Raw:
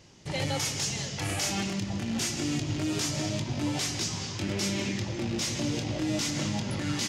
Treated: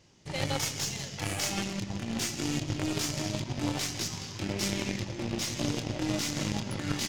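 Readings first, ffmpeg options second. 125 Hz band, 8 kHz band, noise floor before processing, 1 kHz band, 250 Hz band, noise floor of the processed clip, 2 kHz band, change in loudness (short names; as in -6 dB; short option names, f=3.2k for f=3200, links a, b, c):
-2.5 dB, -2.0 dB, -37 dBFS, -1.0 dB, -2.5 dB, -42 dBFS, -1.5 dB, -2.0 dB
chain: -af "aeval=exprs='0.112*(cos(1*acos(clip(val(0)/0.112,-1,1)))-cos(1*PI/2))+0.0112*(cos(2*acos(clip(val(0)/0.112,-1,1)))-cos(2*PI/2))+0.0251*(cos(3*acos(clip(val(0)/0.112,-1,1)))-cos(3*PI/2))':c=same,volume=3.5dB"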